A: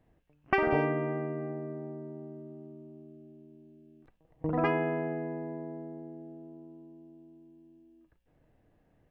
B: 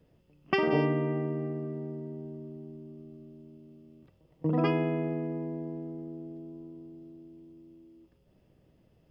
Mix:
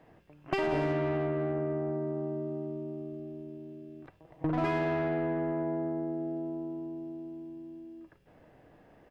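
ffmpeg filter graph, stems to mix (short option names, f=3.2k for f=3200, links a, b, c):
-filter_complex "[0:a]asplit=2[a][b];[b]highpass=f=720:p=1,volume=21dB,asoftclip=type=tanh:threshold=-19.5dB[c];[a][c]amix=inputs=2:normalize=0,lowpass=f=1.6k:p=1,volume=-6dB,volume=1.5dB[d];[1:a]adelay=2.3,volume=-0.5dB[e];[d][e]amix=inputs=2:normalize=0,acompressor=threshold=-30dB:ratio=2.5"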